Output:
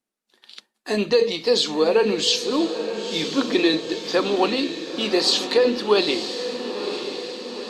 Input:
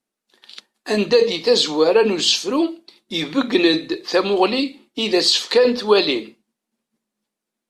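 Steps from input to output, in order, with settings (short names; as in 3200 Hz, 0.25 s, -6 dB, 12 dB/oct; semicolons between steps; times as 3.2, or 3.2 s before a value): diffused feedback echo 0.96 s, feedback 60%, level -9 dB; gain -3.5 dB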